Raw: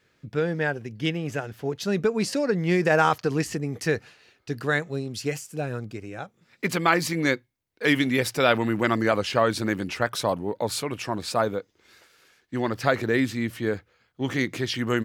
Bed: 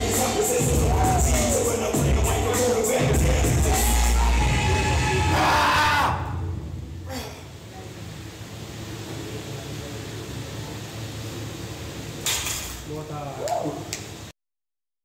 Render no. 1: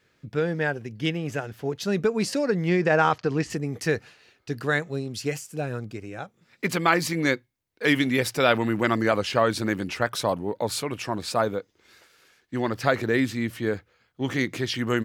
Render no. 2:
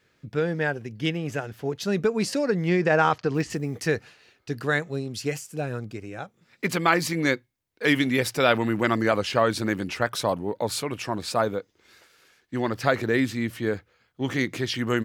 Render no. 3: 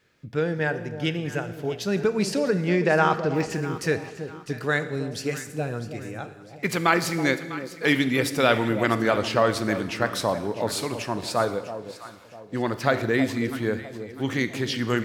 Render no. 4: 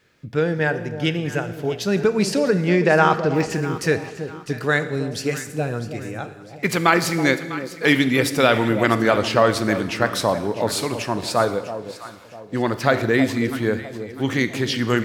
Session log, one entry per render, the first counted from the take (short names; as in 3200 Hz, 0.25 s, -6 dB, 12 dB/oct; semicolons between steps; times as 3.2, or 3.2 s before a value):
2.69–3.5 air absorption 88 m
3.34–3.86 companded quantiser 8-bit
echo with dull and thin repeats by turns 0.325 s, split 850 Hz, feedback 59%, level -10 dB; Schroeder reverb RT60 1.2 s, combs from 26 ms, DRR 12 dB
gain +4.5 dB; limiter -2 dBFS, peak gain reduction 2.5 dB